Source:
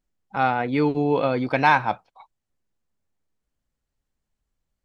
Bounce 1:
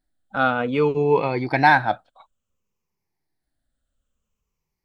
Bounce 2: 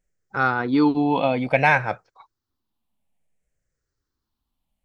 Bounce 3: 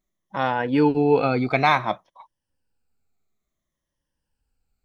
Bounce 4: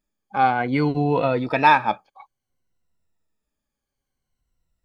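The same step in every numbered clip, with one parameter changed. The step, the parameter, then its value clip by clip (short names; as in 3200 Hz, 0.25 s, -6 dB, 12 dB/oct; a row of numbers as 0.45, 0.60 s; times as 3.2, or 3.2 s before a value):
moving spectral ripple, ripples per octave: 0.79, 0.52, 1.2, 2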